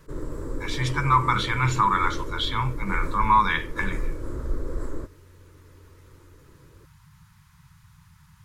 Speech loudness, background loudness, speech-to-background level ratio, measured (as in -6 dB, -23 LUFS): -24.0 LUFS, -35.0 LUFS, 11.0 dB